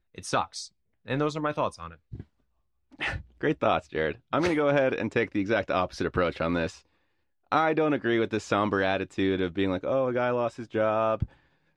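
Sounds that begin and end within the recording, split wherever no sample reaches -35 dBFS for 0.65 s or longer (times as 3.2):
3.01–6.7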